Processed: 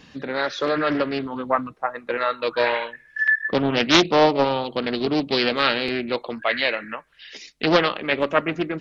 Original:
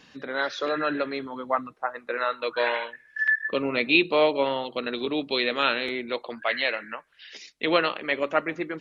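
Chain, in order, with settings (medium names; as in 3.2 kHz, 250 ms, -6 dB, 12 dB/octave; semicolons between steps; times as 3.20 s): bass shelf 200 Hz +10 dB; band-stop 1.5 kHz, Q 24; loudspeaker Doppler distortion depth 0.43 ms; trim +3.5 dB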